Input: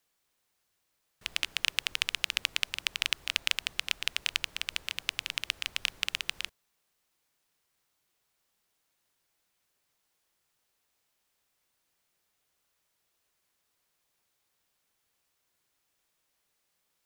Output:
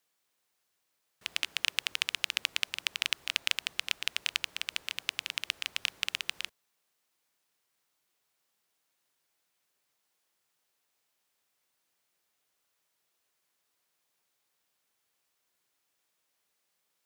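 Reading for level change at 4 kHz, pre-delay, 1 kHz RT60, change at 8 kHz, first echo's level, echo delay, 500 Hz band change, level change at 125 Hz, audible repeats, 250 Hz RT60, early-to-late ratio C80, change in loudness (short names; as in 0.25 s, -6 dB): -1.0 dB, none, none, -1.0 dB, none, none, -1.5 dB, n/a, none, none, none, -1.0 dB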